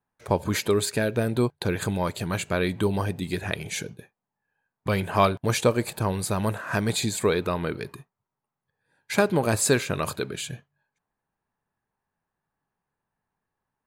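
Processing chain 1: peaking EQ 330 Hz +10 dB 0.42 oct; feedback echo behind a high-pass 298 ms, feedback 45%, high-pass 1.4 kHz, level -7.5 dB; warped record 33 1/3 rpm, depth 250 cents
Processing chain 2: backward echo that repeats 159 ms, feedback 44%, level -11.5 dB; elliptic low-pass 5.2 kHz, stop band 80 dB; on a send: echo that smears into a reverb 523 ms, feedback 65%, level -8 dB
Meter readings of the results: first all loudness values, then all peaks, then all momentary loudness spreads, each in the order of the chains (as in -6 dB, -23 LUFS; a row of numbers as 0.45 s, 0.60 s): -24.0 LUFS, -26.5 LUFS; -4.5 dBFS, -7.0 dBFS; 12 LU, 15 LU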